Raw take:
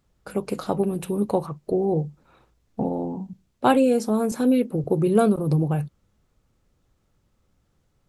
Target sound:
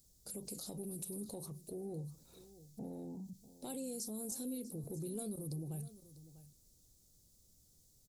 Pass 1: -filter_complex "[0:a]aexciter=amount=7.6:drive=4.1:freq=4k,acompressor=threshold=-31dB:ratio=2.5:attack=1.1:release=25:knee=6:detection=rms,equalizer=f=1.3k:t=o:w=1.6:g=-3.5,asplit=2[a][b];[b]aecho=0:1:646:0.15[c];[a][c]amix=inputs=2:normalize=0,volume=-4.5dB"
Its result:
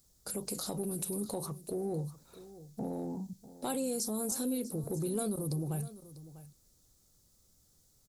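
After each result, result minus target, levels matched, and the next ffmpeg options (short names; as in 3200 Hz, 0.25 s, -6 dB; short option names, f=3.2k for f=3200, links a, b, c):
compressor: peak gain reduction -7 dB; 1000 Hz band +5.5 dB
-filter_complex "[0:a]aexciter=amount=7.6:drive=4.1:freq=4k,acompressor=threshold=-42.5dB:ratio=2.5:attack=1.1:release=25:knee=6:detection=rms,equalizer=f=1.3k:t=o:w=1.6:g=-3.5,asplit=2[a][b];[b]aecho=0:1:646:0.15[c];[a][c]amix=inputs=2:normalize=0,volume=-4.5dB"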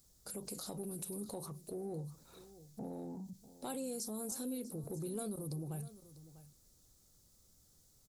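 1000 Hz band +5.5 dB
-filter_complex "[0:a]aexciter=amount=7.6:drive=4.1:freq=4k,acompressor=threshold=-42.5dB:ratio=2.5:attack=1.1:release=25:knee=6:detection=rms,equalizer=f=1.3k:t=o:w=1.6:g=-15,asplit=2[a][b];[b]aecho=0:1:646:0.15[c];[a][c]amix=inputs=2:normalize=0,volume=-4.5dB"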